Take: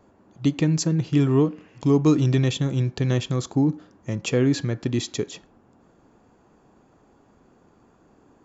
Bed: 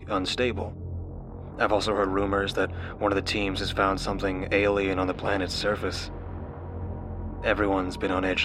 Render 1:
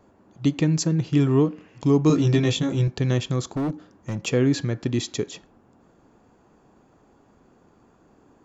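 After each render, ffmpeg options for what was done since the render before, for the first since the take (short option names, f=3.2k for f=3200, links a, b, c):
-filter_complex "[0:a]asettb=1/sr,asplit=3[a][b][c];[a]atrim=end=2.084[d];[b]atrim=start=2.08:end=2.88,asetpts=PTS-STARTPTS,afade=t=in:d=0.004:c=qsin,afade=t=out:st=0.796:d=0.004:c=qsin,asplit=2[e][f];[f]adelay=18,volume=-2dB[g];[e][g]amix=inputs=2:normalize=0,atrim=end_sample=35280[h];[c]atrim=start=2.876[i];[d][h]acrossfade=d=0.004:c1=hsin:c2=qsin[j];[j][i]acrossfade=d=0.004:c1=qsin:c2=hsin,asettb=1/sr,asplit=3[k][l][m];[k]atrim=end=3.494[n];[l]atrim=start=3.49:end=4.27,asetpts=PTS-STARTPTS,afade=t=in:d=0.004:c=qsin,afade=t=out:st=0.776:d=0.004:c=qsin,volume=22.5dB,asoftclip=hard,volume=-22.5dB[o];[m]atrim=start=4.266[p];[n][o]acrossfade=d=0.004:c1=hsin:c2=qsin[q];[q][p]acrossfade=d=0.004:c1=qsin:c2=hsin"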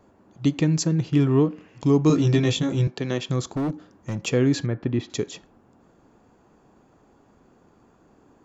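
-filter_complex "[0:a]asettb=1/sr,asplit=3[a][b][c];[a]atrim=end=1.104[d];[b]atrim=start=1.1:end=1.5,asetpts=PTS-STARTPTS,afade=t=in:d=0.004:c=qsin,afade=t=out:st=0.396:d=0.004:c=qsin,adynamicsmooth=sensitivity=3:basefreq=4.9k[e];[c]atrim=start=1.496[f];[d][e]acrossfade=d=0.004:c1=hsin:c2=qsin[g];[g][f]acrossfade=d=0.004:c1=qsin:c2=hsin,asettb=1/sr,asplit=3[h][i][j];[h]atrim=end=2.874[k];[i]atrim=start=2.87:end=3.29,asetpts=PTS-STARTPTS,afade=t=in:d=0.004:c=qsin,afade=t=out:st=0.416:d=0.004:c=qsin,highpass=210,lowpass=6.7k[l];[j]atrim=start=3.286[m];[k][l]acrossfade=d=0.004:c1=hsin:c2=qsin[n];[n][m]acrossfade=d=0.004:c1=qsin:c2=hsin,asettb=1/sr,asplit=3[o][p][q];[o]atrim=end=4.664[r];[p]atrim=start=4.66:end=5.1,asetpts=PTS-STARTPTS,afade=t=in:d=0.004:c=qsin,afade=t=out:st=0.436:d=0.004:c=qsin,lowpass=2.1k[s];[q]atrim=start=5.096[t];[r][s]acrossfade=d=0.004:c1=hsin:c2=qsin[u];[u][t]acrossfade=d=0.004:c1=qsin:c2=hsin"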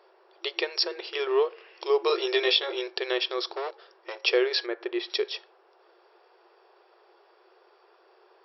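-af "afftfilt=real='re*between(b*sr/4096,340,5600)':imag='im*between(b*sr/4096,340,5600)':win_size=4096:overlap=0.75,highshelf=f=2.3k:g=10"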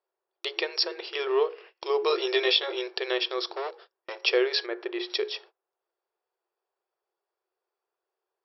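-af "bandreject=f=60:t=h:w=6,bandreject=f=120:t=h:w=6,bandreject=f=180:t=h:w=6,bandreject=f=240:t=h:w=6,bandreject=f=300:t=h:w=6,bandreject=f=360:t=h:w=6,bandreject=f=420:t=h:w=6,bandreject=f=480:t=h:w=6,agate=range=-28dB:threshold=-48dB:ratio=16:detection=peak"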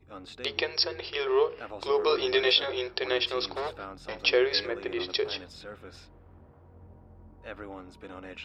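-filter_complex "[1:a]volume=-17.5dB[a];[0:a][a]amix=inputs=2:normalize=0"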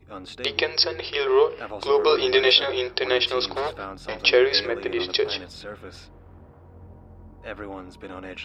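-af "volume=6dB"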